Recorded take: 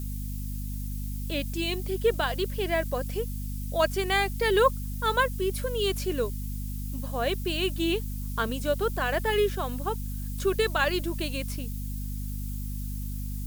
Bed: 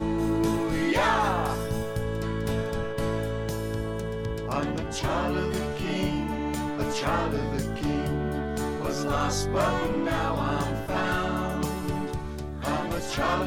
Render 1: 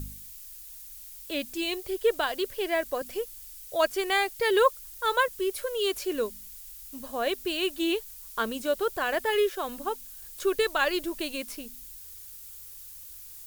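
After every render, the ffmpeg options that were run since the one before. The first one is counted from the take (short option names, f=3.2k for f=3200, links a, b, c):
-af "bandreject=f=50:t=h:w=4,bandreject=f=100:t=h:w=4,bandreject=f=150:t=h:w=4,bandreject=f=200:t=h:w=4,bandreject=f=250:t=h:w=4"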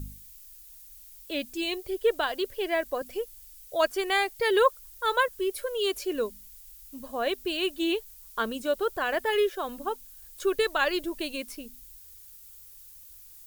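-af "afftdn=nr=6:nf=-45"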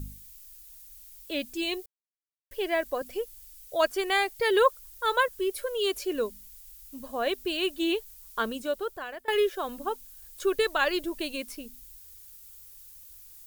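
-filter_complex "[0:a]asplit=4[a][b][c][d];[a]atrim=end=1.86,asetpts=PTS-STARTPTS,afade=t=out:st=1.856:d=0.004:c=hsin[e];[b]atrim=start=1.86:end=2.51,asetpts=PTS-STARTPTS,volume=0[f];[c]atrim=start=2.51:end=9.28,asetpts=PTS-STARTPTS,afade=t=in:d=0.004:c=hsin,afade=t=out:st=5.95:d=0.82:silence=0.0944061[g];[d]atrim=start=9.28,asetpts=PTS-STARTPTS,afade=t=in:d=0.004:c=hsin:silence=0.0944061[h];[e][f][g][h]concat=n=4:v=0:a=1"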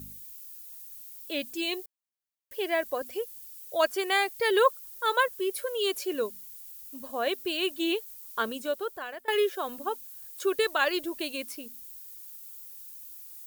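-af "highpass=f=210:p=1,highshelf=f=12k:g=5.5"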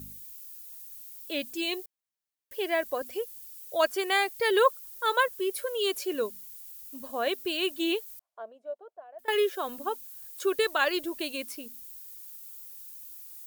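-filter_complex "[0:a]asettb=1/sr,asplit=3[a][b][c];[a]atrim=end=8.194[d];[b]atrim=start=8.19:end=9.19,asetpts=PTS-STARTPTS,afade=t=in:d=0.004:c=qsin,afade=t=out:st=0.996:d=0.004:c=qsin,bandpass=f=660:t=q:w=7.3[e];[c]atrim=start=9.186[f];[d][e]acrossfade=d=0.004:c1=hsin:c2=qsin[g];[g][f]acrossfade=d=0.004:c1=qsin:c2=hsin"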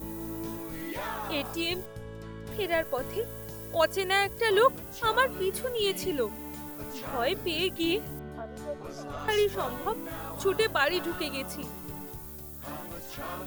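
-filter_complex "[1:a]volume=-12.5dB[a];[0:a][a]amix=inputs=2:normalize=0"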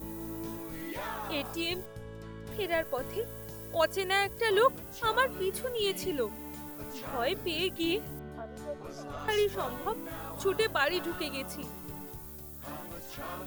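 -af "volume=-2.5dB"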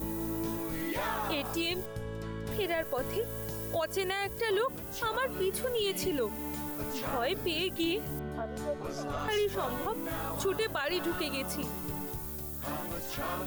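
-filter_complex "[0:a]asplit=2[a][b];[b]acompressor=threshold=-38dB:ratio=6,volume=0dB[c];[a][c]amix=inputs=2:normalize=0,alimiter=limit=-22.5dB:level=0:latency=1:release=52"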